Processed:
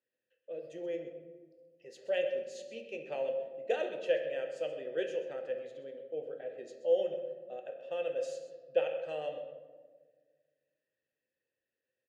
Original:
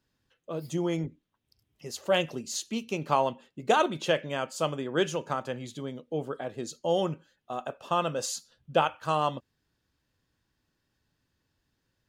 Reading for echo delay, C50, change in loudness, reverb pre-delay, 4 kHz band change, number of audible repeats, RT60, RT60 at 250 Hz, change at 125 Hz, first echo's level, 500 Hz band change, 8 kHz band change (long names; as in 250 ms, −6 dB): 129 ms, 7.0 dB, −6.5 dB, 3 ms, −14.0 dB, 1, 1.5 s, 1.9 s, below −20 dB, −13.5 dB, −3.0 dB, below −20 dB